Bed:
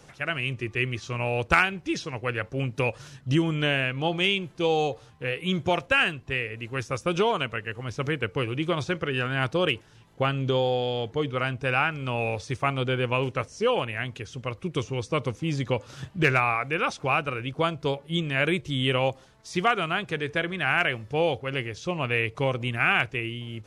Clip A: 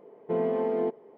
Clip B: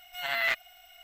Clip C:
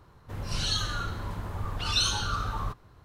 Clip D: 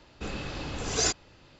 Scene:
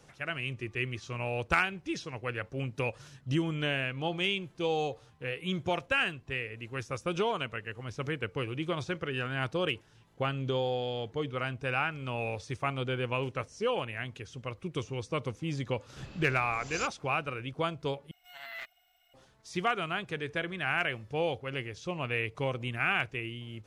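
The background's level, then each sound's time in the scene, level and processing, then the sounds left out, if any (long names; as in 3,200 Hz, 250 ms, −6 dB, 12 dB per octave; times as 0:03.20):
bed −6.5 dB
0:15.75: mix in D −14.5 dB
0:18.11: overwrite with B −15 dB
not used: A, C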